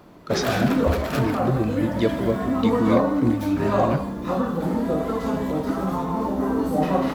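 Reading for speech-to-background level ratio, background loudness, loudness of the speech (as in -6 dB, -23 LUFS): -2.5 dB, -24.0 LUFS, -26.5 LUFS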